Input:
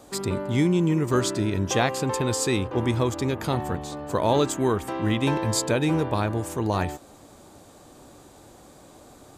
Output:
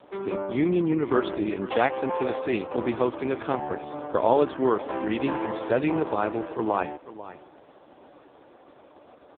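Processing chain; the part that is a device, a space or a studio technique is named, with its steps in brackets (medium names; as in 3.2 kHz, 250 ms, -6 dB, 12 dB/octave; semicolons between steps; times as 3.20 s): satellite phone (band-pass 310–3200 Hz; delay 494 ms -15.5 dB; trim +3 dB; AMR-NB 4.75 kbps 8 kHz)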